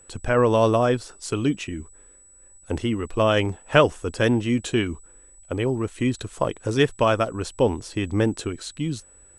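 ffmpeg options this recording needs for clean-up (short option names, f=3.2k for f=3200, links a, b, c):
-af "bandreject=f=7.9k:w=30"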